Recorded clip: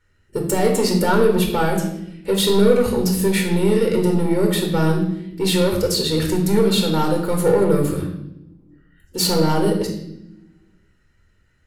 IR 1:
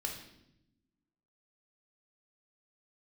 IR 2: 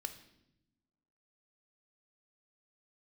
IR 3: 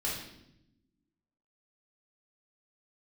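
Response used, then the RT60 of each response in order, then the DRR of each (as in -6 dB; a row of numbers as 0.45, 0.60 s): 1; 0.85 s, not exponential, 0.85 s; 1.5, 8.5, -5.5 dB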